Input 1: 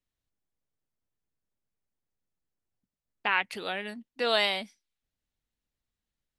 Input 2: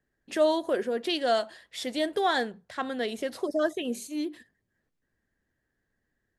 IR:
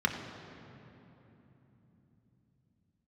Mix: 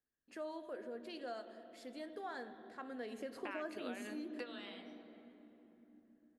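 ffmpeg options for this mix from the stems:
-filter_complex "[0:a]acompressor=threshold=-36dB:ratio=3,adelay=200,volume=-5.5dB,asplit=2[link_01][link_02];[link_02]volume=-17dB[link_03];[1:a]volume=-12dB,afade=type=in:start_time=2.72:duration=0.56:silence=0.421697,asplit=3[link_04][link_05][link_06];[link_05]volume=-12.5dB[link_07];[link_06]apad=whole_len=290580[link_08];[link_01][link_08]sidechaingate=range=-33dB:threshold=-60dB:ratio=16:detection=peak[link_09];[2:a]atrim=start_sample=2205[link_10];[link_03][link_07]amix=inputs=2:normalize=0[link_11];[link_11][link_10]afir=irnorm=-1:irlink=0[link_12];[link_09][link_04][link_12]amix=inputs=3:normalize=0,acompressor=threshold=-42dB:ratio=2.5"

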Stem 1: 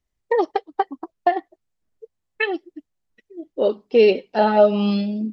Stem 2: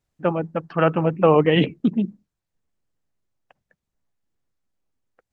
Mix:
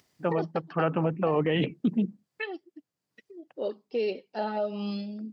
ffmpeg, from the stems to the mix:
ffmpeg -i stem1.wav -i stem2.wav -filter_complex "[0:a]equalizer=frequency=4800:width=5.2:gain=8,alimiter=limit=-8dB:level=0:latency=1:release=216,acompressor=mode=upward:threshold=-28dB:ratio=2.5,volume=-12.5dB[link_01];[1:a]volume=-4dB[link_02];[link_01][link_02]amix=inputs=2:normalize=0,highpass=frequency=110:width=0.5412,highpass=frequency=110:width=1.3066,alimiter=limit=-16.5dB:level=0:latency=1:release=25" out.wav

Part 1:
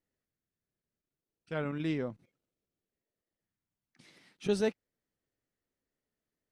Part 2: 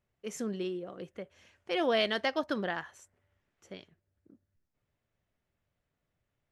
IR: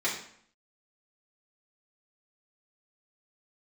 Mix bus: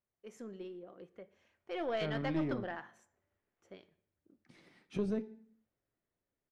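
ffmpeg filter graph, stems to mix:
-filter_complex "[0:a]acrossover=split=330[link_01][link_02];[link_02]acompressor=threshold=-41dB:ratio=6[link_03];[link_01][link_03]amix=inputs=2:normalize=0,adelay=500,volume=-3dB,asplit=2[link_04][link_05];[link_05]volume=-18.5dB[link_06];[1:a]lowshelf=frequency=180:gain=-9,volume=-8dB,asplit=2[link_07][link_08];[link_08]volume=-20.5dB[link_09];[2:a]atrim=start_sample=2205[link_10];[link_06][link_09]amix=inputs=2:normalize=0[link_11];[link_11][link_10]afir=irnorm=-1:irlink=0[link_12];[link_04][link_07][link_12]amix=inputs=3:normalize=0,highshelf=frequency=2200:gain=-11,dynaudnorm=framelen=360:gausssize=9:maxgain=4dB,aeval=exprs='(tanh(17.8*val(0)+0.3)-tanh(0.3))/17.8':channel_layout=same"

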